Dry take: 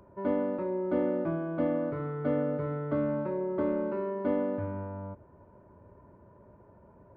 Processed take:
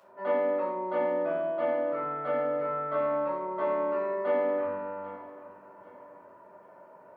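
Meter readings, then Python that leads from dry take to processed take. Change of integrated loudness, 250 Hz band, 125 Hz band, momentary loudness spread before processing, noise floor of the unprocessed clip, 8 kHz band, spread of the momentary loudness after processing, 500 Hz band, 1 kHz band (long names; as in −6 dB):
+1.5 dB, −8.0 dB, −14.0 dB, 7 LU, −57 dBFS, can't be measured, 12 LU, +3.5 dB, +8.0 dB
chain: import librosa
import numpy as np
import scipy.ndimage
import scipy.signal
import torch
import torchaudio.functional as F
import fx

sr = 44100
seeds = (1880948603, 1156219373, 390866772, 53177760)

y = fx.echo_feedback(x, sr, ms=790, feedback_pct=35, wet_db=-18)
y = fx.room_shoebox(y, sr, seeds[0], volume_m3=730.0, walls='furnished', distance_m=6.5)
y = fx.rider(y, sr, range_db=3, speed_s=2.0)
y = scipy.signal.sosfilt(scipy.signal.butter(2, 710.0, 'highpass', fs=sr, output='sos'), y)
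y = y * 10.0 ** (-1.0 / 20.0)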